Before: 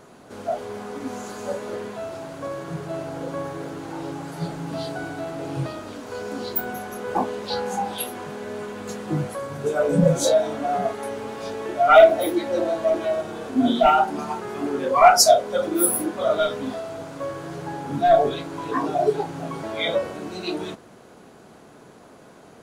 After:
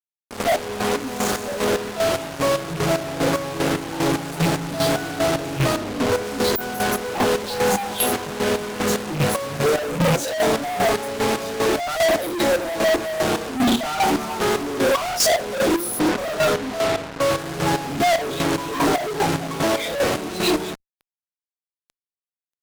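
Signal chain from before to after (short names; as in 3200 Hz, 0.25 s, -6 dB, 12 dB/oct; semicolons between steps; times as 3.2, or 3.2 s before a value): rattling part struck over -26 dBFS, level -25 dBFS; 5.76–6.23 tilt shelf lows +7 dB, about 1300 Hz; 15.99–17.3 Chebyshev low-pass 2100 Hz; fuzz box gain 43 dB, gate -36 dBFS; chopper 2.5 Hz, depth 65%, duty 40%; gain -2.5 dB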